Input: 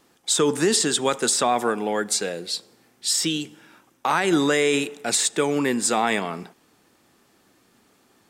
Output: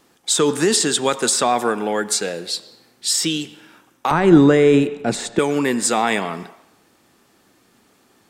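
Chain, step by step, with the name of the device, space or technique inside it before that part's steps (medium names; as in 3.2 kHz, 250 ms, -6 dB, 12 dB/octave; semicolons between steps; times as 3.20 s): 4.11–5.39 s: tilt EQ -4 dB/octave; filtered reverb send (on a send: high-pass 550 Hz + low-pass 4.4 kHz + reverberation RT60 0.90 s, pre-delay 88 ms, DRR 15.5 dB); on the sum: trim +3 dB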